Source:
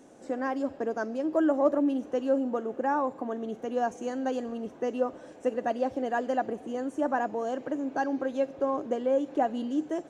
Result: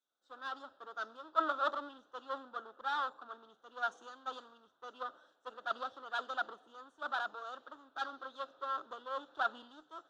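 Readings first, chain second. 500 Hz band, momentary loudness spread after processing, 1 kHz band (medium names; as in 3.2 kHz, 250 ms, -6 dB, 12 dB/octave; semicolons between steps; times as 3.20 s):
-18.5 dB, 16 LU, -6.0 dB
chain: one-sided clip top -34 dBFS; two resonant band-passes 2.2 kHz, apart 1.4 oct; three bands expanded up and down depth 100%; trim +7 dB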